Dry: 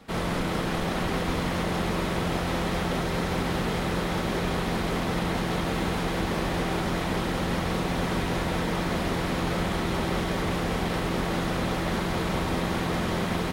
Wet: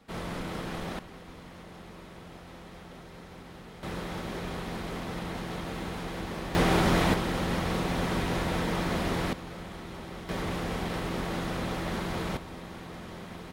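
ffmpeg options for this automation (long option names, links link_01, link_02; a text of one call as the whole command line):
ffmpeg -i in.wav -af "asetnsamples=nb_out_samples=441:pad=0,asendcmd='0.99 volume volume -19.5dB;3.83 volume volume -8.5dB;6.55 volume volume 4dB;7.14 volume volume -2dB;9.33 volume volume -14dB;10.29 volume volume -5dB;12.37 volume volume -15dB',volume=-8dB" out.wav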